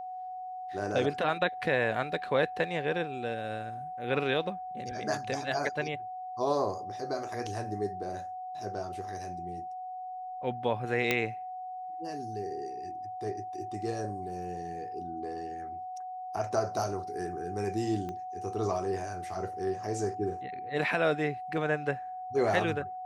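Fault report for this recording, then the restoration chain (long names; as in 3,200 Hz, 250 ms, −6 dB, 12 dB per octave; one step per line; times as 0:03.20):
whistle 740 Hz −37 dBFS
0:11.11: click −11 dBFS
0:18.09: click −26 dBFS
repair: click removal
notch filter 740 Hz, Q 30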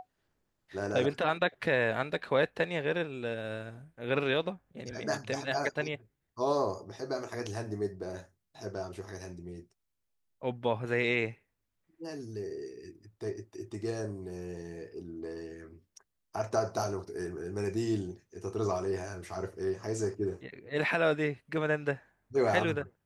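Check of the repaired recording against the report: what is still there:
0:18.09: click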